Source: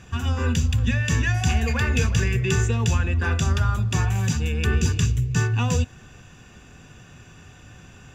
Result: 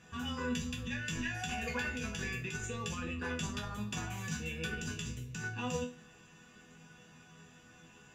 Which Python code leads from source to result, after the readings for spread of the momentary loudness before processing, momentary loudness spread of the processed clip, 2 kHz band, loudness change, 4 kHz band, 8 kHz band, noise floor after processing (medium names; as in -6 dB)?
2 LU, 21 LU, -10.5 dB, -15.5 dB, -10.0 dB, -12.5 dB, -59 dBFS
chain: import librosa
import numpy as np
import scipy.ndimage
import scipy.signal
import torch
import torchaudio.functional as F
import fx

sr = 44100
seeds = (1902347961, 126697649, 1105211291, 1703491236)

y = fx.highpass(x, sr, hz=110.0, slope=6)
y = fx.over_compress(y, sr, threshold_db=-24.0, ratio=-0.5)
y = fx.resonator_bank(y, sr, root=52, chord='major', decay_s=0.33)
y = y * 10.0 ** (6.5 / 20.0)